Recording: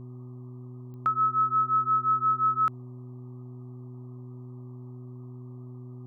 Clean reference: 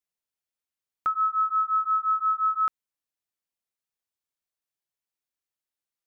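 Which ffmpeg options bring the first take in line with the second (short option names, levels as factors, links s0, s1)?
-af "adeclick=t=4,bandreject=f=124.7:t=h:w=4,bandreject=f=249.4:t=h:w=4,bandreject=f=374.1:t=h:w=4,afftdn=nr=30:nf=-43"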